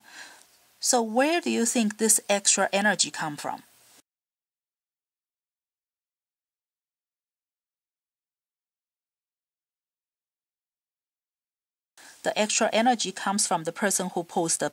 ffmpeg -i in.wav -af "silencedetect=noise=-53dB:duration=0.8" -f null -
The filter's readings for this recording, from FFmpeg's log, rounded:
silence_start: 4.00
silence_end: 11.98 | silence_duration: 7.97